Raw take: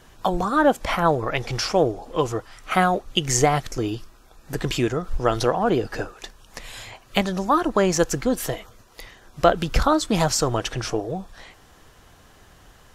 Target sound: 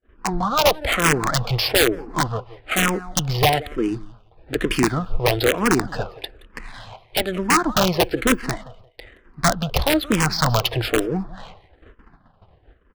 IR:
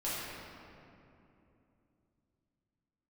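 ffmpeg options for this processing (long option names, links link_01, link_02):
-filter_complex "[0:a]agate=range=-30dB:threshold=-49dB:ratio=16:detection=peak,highshelf=frequency=3600:gain=4,dynaudnorm=framelen=140:gausssize=11:maxgain=9dB,aresample=16000,volume=10dB,asoftclip=hard,volume=-10dB,aresample=44100,aresample=11025,aresample=44100,adynamicsmooth=sensitivity=4.5:basefreq=1400,asplit=2[link_01][link_02];[link_02]aecho=0:1:173|346:0.106|0.0212[link_03];[link_01][link_03]amix=inputs=2:normalize=0,aeval=exprs='(mod(3.16*val(0)+1,2)-1)/3.16':channel_layout=same,asplit=2[link_04][link_05];[link_05]afreqshift=-1.1[link_06];[link_04][link_06]amix=inputs=2:normalize=1,volume=2.5dB"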